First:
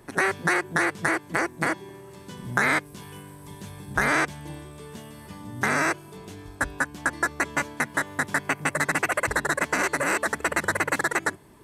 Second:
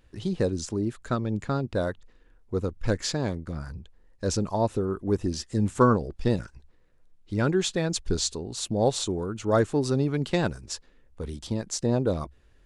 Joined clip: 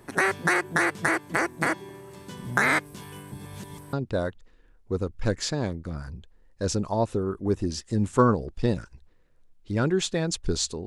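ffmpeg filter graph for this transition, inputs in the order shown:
ffmpeg -i cue0.wav -i cue1.wav -filter_complex "[0:a]apad=whole_dur=10.86,atrim=end=10.86,asplit=2[link_01][link_02];[link_01]atrim=end=3.322[link_03];[link_02]atrim=start=3.318:end=3.932,asetpts=PTS-STARTPTS,areverse[link_04];[1:a]atrim=start=1.548:end=8.48[link_05];[link_03][link_04]acrossfade=duration=0.004:curve1=hsin:curve2=hsin[link_06];[link_06][link_05]acrossfade=duration=0.004:curve1=hsin:curve2=hsin" out.wav

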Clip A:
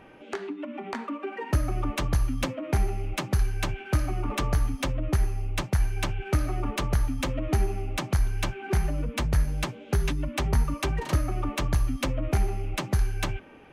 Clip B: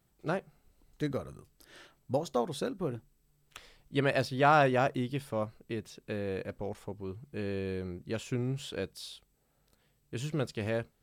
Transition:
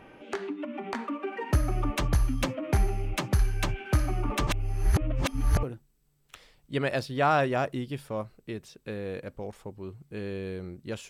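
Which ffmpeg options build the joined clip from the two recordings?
ffmpeg -i cue0.wav -i cue1.wav -filter_complex "[0:a]apad=whole_dur=11.09,atrim=end=11.09,asplit=2[link_01][link_02];[link_01]atrim=end=4.472[link_03];[link_02]atrim=start=4.468:end=5.632,asetpts=PTS-STARTPTS,areverse[link_04];[1:a]atrim=start=2.848:end=8.31[link_05];[link_03][link_04]acrossfade=duration=0.004:curve1=hsin:curve2=hsin[link_06];[link_06][link_05]acrossfade=duration=0.004:curve1=hsin:curve2=hsin" out.wav

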